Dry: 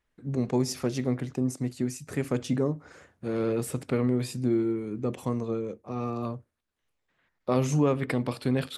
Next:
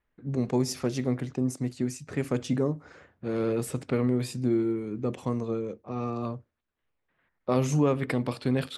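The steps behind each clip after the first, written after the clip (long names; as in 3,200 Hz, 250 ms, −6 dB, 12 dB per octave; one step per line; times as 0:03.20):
low-pass that shuts in the quiet parts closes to 2,600 Hz, open at −24 dBFS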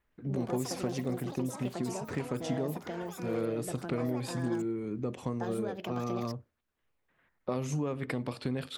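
downward compressor 3 to 1, threshold −34 dBFS, peak gain reduction 12 dB
delay with pitch and tempo change per echo 118 ms, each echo +6 semitones, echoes 3, each echo −6 dB
level +1.5 dB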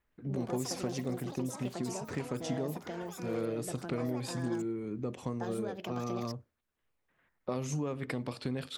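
dynamic equaliser 6,000 Hz, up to +4 dB, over −57 dBFS, Q 1.1
level −2 dB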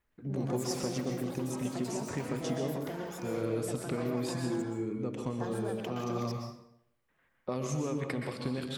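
convolution reverb RT60 0.70 s, pre-delay 115 ms, DRR 3 dB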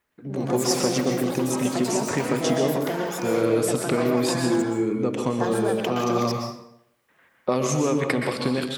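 high-pass filter 250 Hz 6 dB per octave
automatic gain control gain up to 6.5 dB
level +7 dB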